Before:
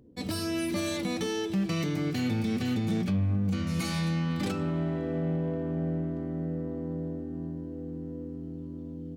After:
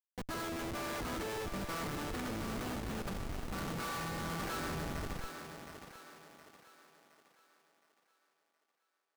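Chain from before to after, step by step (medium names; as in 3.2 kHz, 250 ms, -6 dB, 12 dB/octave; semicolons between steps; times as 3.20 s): octave divider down 2 oct, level -2 dB; dynamic bell 1.9 kHz, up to +4 dB, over -53 dBFS, Q 1.3; band-pass sweep 1.2 kHz -> 3.9 kHz, 4.34–5.83 s; harmony voices +4 st -9 dB; Schmitt trigger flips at -43 dBFS; thinning echo 717 ms, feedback 45%, high-pass 250 Hz, level -7 dB; trim +7.5 dB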